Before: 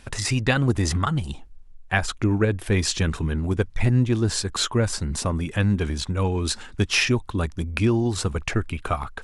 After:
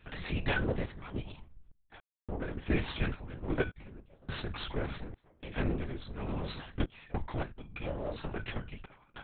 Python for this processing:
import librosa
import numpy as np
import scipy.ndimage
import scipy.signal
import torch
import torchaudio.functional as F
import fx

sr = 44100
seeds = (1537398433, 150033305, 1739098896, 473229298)

y = fx.lower_of_two(x, sr, delay_ms=2.1)
y = fx.comb_fb(y, sr, f0_hz=300.0, decay_s=0.22, harmonics='all', damping=0.0, mix_pct=80)
y = fx.lpc_vocoder(y, sr, seeds[0], excitation='whisper', order=8)
y = fx.tremolo_random(y, sr, seeds[1], hz=3.5, depth_pct=100)
y = y * librosa.db_to_amplitude(3.0)